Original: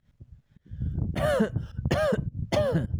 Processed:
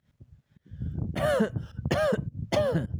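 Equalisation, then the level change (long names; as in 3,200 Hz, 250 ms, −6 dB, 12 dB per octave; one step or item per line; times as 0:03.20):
high-pass filter 54 Hz
low-shelf EQ 120 Hz −4.5 dB
0.0 dB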